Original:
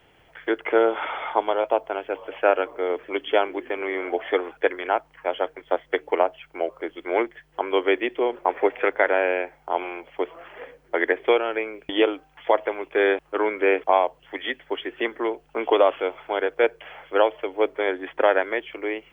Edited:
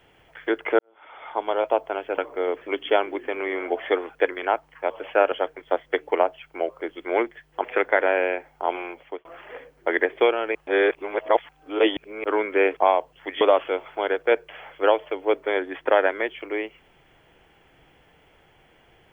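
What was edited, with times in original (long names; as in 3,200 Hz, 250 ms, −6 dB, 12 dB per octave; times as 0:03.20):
0:00.79–0:01.58: fade in quadratic
0:02.18–0:02.60: move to 0:05.32
0:07.64–0:08.71: remove
0:09.91–0:10.32: fade out equal-power
0:11.62–0:13.31: reverse
0:14.48–0:15.73: remove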